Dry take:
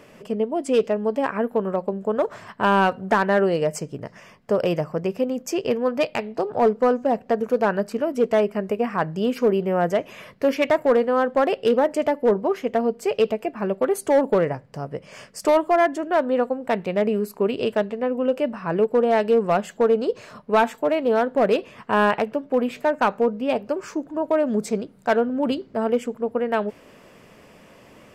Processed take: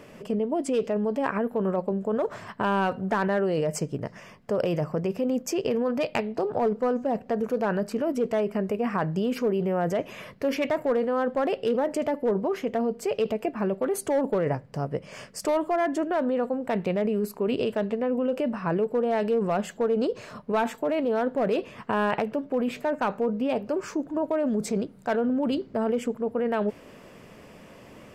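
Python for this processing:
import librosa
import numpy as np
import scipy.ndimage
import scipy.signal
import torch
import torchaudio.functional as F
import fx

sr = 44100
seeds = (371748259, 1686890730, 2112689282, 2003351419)

p1 = fx.low_shelf(x, sr, hz=460.0, db=3.5)
p2 = fx.over_compress(p1, sr, threshold_db=-23.0, ratio=-0.5)
p3 = p1 + (p2 * 10.0 ** (-1.0 / 20.0))
y = p3 * 10.0 ** (-9.0 / 20.0)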